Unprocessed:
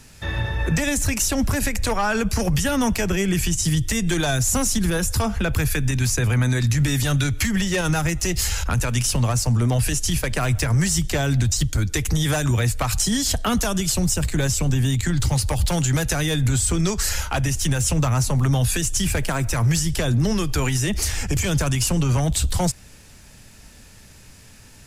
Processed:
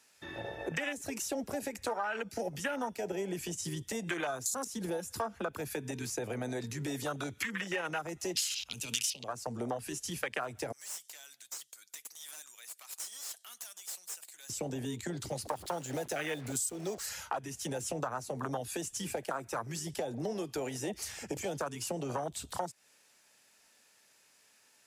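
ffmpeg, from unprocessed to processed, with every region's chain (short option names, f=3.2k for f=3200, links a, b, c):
-filter_complex "[0:a]asettb=1/sr,asplit=3[a][b][c];[a]atrim=end=1.844[d];[b]atrim=start=1.84:end=3.37,asetpts=PTS-STARTPTS,afade=t=in:d=0.004:c=qsin,afade=t=out:st=1.526:d=0.004:c=qsin,asuperstop=centerf=1100:order=20:qfactor=7,bandreject=f=431.6:t=h:w=4,bandreject=f=863.2:t=h:w=4,bandreject=f=1.2948k:t=h:w=4,bandreject=f=1.7264k:t=h:w=4,bandreject=f=2.158k:t=h:w=4,bandreject=f=2.5896k:t=h:w=4,bandreject=f=3.0212k:t=h:w=4,bandreject=f=3.4528k:t=h:w=4,bandreject=f=3.8844k:t=h:w=4,bandreject=f=4.316k:t=h:w=4,bandreject=f=4.7476k:t=h:w=4,bandreject=f=5.1792k:t=h:w=4,bandreject=f=5.6108k:t=h:w=4,bandreject=f=6.0424k:t=h:w=4,bandreject=f=6.474k:t=h:w=4,bandreject=f=6.9056k:t=h:w=4,bandreject=f=7.3372k:t=h:w=4,bandreject=f=7.7688k:t=h:w=4,bandreject=f=8.2004k:t=h:w=4,bandreject=f=8.632k:t=h:w=4,bandreject=f=9.0636k:t=h:w=4,bandreject=f=9.4952k:t=h:w=4,bandreject=f=9.9268k:t=h:w=4,bandreject=f=10.3584k:t=h:w=4,bandreject=f=10.79k:t=h:w=4,bandreject=f=11.2216k:t=h:w=4,bandreject=f=11.6532k:t=h:w=4,bandreject=f=12.0848k:t=h:w=4,bandreject=f=12.5164k:t=h:w=4,bandreject=f=12.948k:t=h:w=4,bandreject=f=13.3796k:t=h:w=4,bandreject=f=13.8112k:t=h:w=4,bandreject=f=14.2428k:t=h:w=4,bandreject=f=14.6744k:t=h:w=4,bandreject=f=15.106k:t=h:w=4,bandreject=f=15.5376k:t=h:w=4,bandreject=f=15.9692k:t=h:w=4[e];[c]atrim=start=3.366[f];[d][e]acrossfade=d=0.004:c1=hsin:c2=qsin[g];[g][f]acrossfade=d=0.004:c1=qsin:c2=hsin,asettb=1/sr,asplit=3[h][i][j];[h]atrim=end=8.354[k];[i]atrim=start=8.35:end=9.24,asetpts=PTS-STARTPTS,afade=t=in:d=0.004:c=qsin,afade=t=out:st=0.886:d=0.004:c=qsin,highshelf=f=2.2k:t=q:w=3:g=7.5,bandreject=f=330:w=8.3,acrossover=split=270|3000[l][m][n];[m]acompressor=threshold=-29dB:ratio=3:attack=3.2:release=140:knee=2.83:detection=peak[o];[l][o][n]amix=inputs=3:normalize=0[p];[j]atrim=start=9.236[q];[k][p]acrossfade=d=0.004:c1=hsin:c2=qsin[r];[r][q]acrossfade=d=0.004:c1=qsin:c2=hsin,asettb=1/sr,asplit=3[s][t][u];[s]atrim=end=10.724[v];[t]atrim=start=10.72:end=14.5,asetpts=PTS-STARTPTS,afade=t=in:d=0.004:c=qsin,afade=t=out:st=3.776:d=0.004:c=qsin,aderivative,aeval=exprs='clip(val(0),-1,0.0282)':c=same[w];[u]atrim=start=14.496[x];[v][w]acrossfade=d=0.004:c1=hsin:c2=qsin[y];[y][x]acrossfade=d=0.004:c1=qsin:c2=hsin,asettb=1/sr,asplit=3[z][aa][ab];[z]atrim=end=15.454[ac];[aa]atrim=start=15.45:end=17.06,asetpts=PTS-STARTPTS,afade=t=in:d=0.004:c=qsin,afade=t=out:st=1.606:d=0.004:c=qsin,lowpass=f=3.2k:p=1,aemphasis=mode=production:type=50kf,acrusher=bits=4:mix=0:aa=0.5[ad];[ab]atrim=start=17.056[ae];[ac][ad]acrossfade=d=0.004:c1=hsin:c2=qsin[af];[af][ae]acrossfade=d=0.004:c1=qsin:c2=hsin,afwtdn=0.0562,highpass=500,acompressor=threshold=-34dB:ratio=6,volume=1.5dB"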